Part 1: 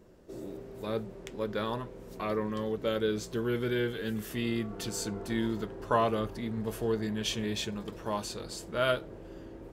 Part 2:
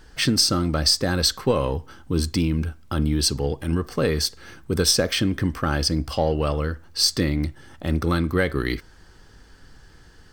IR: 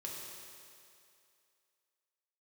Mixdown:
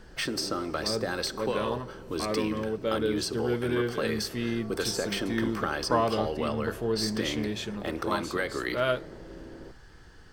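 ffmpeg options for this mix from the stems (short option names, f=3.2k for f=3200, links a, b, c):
-filter_complex "[0:a]bandreject=f=50:t=h:w=6,bandreject=f=100:t=h:w=6,volume=1.5dB[a];[1:a]acrossover=split=340|1600|6600[b][c][d][e];[b]acompressor=threshold=-48dB:ratio=4[f];[c]acompressor=threshold=-29dB:ratio=4[g];[d]acompressor=threshold=-31dB:ratio=4[h];[e]acompressor=threshold=-35dB:ratio=4[i];[f][g][h][i]amix=inputs=4:normalize=0,volume=-1dB,asplit=2[j][k];[k]volume=-15.5dB[l];[2:a]atrim=start_sample=2205[m];[l][m]afir=irnorm=-1:irlink=0[n];[a][j][n]amix=inputs=3:normalize=0,highshelf=f=3.6k:g=-6"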